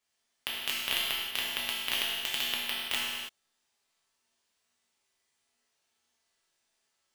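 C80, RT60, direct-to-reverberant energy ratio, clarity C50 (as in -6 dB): 1.0 dB, no single decay rate, -5.5 dB, -1.0 dB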